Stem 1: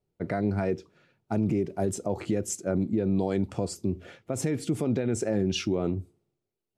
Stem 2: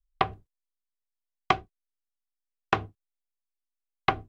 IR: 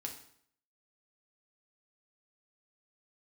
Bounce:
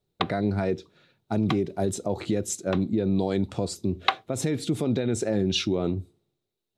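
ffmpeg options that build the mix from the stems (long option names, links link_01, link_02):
-filter_complex "[0:a]volume=1.5dB,asplit=2[link_01][link_02];[1:a]highpass=700,asoftclip=type=hard:threshold=-9dB,volume=2dB[link_03];[link_02]apad=whole_len=189102[link_04];[link_03][link_04]sidechaincompress=threshold=-34dB:ratio=10:attack=16:release=100[link_05];[link_01][link_05]amix=inputs=2:normalize=0,equalizer=frequency=3800:width=4.5:gain=12.5"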